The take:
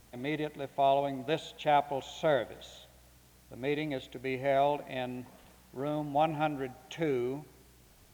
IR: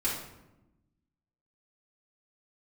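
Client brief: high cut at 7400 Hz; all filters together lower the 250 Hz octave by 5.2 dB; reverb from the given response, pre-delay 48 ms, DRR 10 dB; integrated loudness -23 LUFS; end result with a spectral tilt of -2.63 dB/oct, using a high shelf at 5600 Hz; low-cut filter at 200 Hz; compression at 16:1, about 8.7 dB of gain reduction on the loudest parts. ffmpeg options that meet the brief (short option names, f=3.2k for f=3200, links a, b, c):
-filter_complex "[0:a]highpass=200,lowpass=7.4k,equalizer=f=250:t=o:g=-5.5,highshelf=f=5.6k:g=5,acompressor=threshold=-30dB:ratio=16,asplit=2[a][b];[1:a]atrim=start_sample=2205,adelay=48[c];[b][c]afir=irnorm=-1:irlink=0,volume=-17dB[d];[a][d]amix=inputs=2:normalize=0,volume=14.5dB"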